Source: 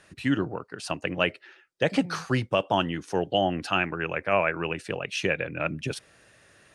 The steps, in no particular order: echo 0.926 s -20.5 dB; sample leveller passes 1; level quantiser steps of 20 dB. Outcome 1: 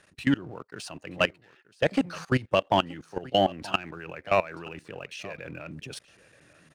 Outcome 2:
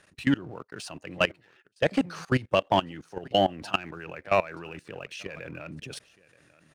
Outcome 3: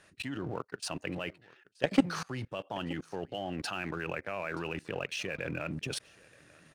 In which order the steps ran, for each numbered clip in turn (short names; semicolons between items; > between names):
sample leveller > level quantiser > echo; echo > sample leveller > level quantiser; level quantiser > echo > sample leveller